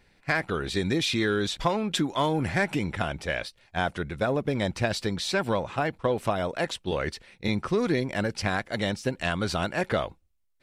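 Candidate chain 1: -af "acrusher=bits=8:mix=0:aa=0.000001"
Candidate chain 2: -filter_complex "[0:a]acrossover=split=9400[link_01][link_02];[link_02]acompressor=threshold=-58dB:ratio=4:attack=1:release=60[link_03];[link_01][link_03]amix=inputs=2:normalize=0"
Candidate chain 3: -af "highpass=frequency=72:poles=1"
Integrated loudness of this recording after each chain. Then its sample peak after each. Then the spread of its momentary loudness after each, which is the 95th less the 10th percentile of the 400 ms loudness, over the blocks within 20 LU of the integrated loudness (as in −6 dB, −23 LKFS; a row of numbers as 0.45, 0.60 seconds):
−28.0, −28.0, −28.5 LKFS; −9.5, −9.5, −10.0 dBFS; 5, 5, 5 LU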